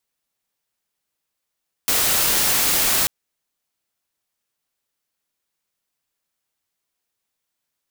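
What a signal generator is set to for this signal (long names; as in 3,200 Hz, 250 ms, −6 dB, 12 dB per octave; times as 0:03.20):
noise white, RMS −18.5 dBFS 1.19 s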